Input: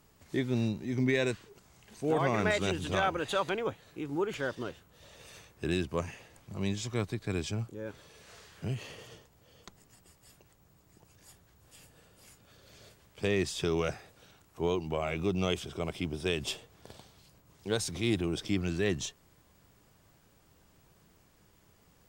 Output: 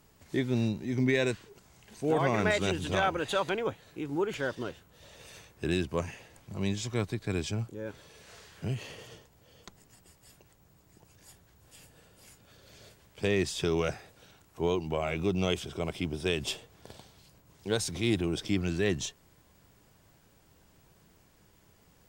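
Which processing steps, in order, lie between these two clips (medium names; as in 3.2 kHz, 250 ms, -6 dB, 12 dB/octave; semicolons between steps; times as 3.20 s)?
band-stop 1.2 kHz, Q 18; trim +1.5 dB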